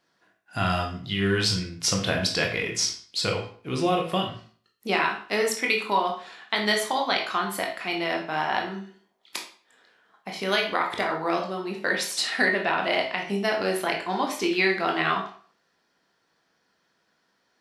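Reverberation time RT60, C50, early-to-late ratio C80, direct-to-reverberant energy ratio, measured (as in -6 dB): 0.45 s, 6.5 dB, 11.5 dB, 0.5 dB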